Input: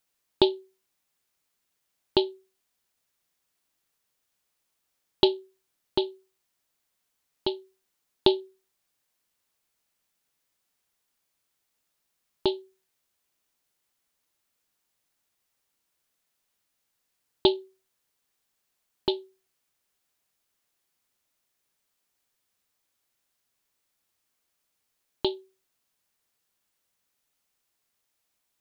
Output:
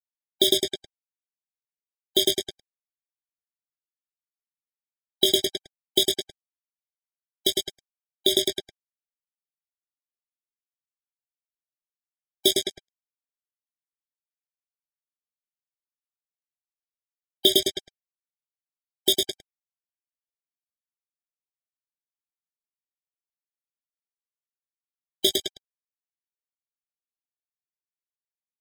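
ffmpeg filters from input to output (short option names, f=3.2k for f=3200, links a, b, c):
-filter_complex "[0:a]highpass=170,lowpass=4.3k,asplit=2[a][b];[b]adelay=20,volume=-6dB[c];[a][c]amix=inputs=2:normalize=0,asplit=2[d][e];[e]adelay=106,lowpass=f=3.2k:p=1,volume=-3.5dB,asplit=2[f][g];[g]adelay=106,lowpass=f=3.2k:p=1,volume=0.51,asplit=2[h][i];[i]adelay=106,lowpass=f=3.2k:p=1,volume=0.51,asplit=2[j][k];[k]adelay=106,lowpass=f=3.2k:p=1,volume=0.51,asplit=2[l][m];[m]adelay=106,lowpass=f=3.2k:p=1,volume=0.51,asplit=2[n][o];[o]adelay=106,lowpass=f=3.2k:p=1,volume=0.51,asplit=2[p][q];[q]adelay=106,lowpass=f=3.2k:p=1,volume=0.51[r];[f][h][j][l][n][p][r]amix=inputs=7:normalize=0[s];[d][s]amix=inputs=2:normalize=0,acrusher=bits=4:mix=0:aa=0.5,aexciter=amount=3.8:drive=7.9:freq=2.6k,alimiter=limit=-5dB:level=0:latency=1:release=66,afftfilt=real='re*eq(mod(floor(b*sr/1024/780),2),0)':imag='im*eq(mod(floor(b*sr/1024/780),2),0)':win_size=1024:overlap=0.75,volume=2dB"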